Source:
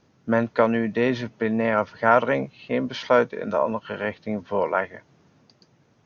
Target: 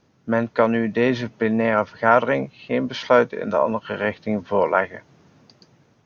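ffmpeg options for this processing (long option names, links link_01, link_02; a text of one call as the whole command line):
ffmpeg -i in.wav -af "dynaudnorm=framelen=240:gausssize=5:maxgain=6dB" out.wav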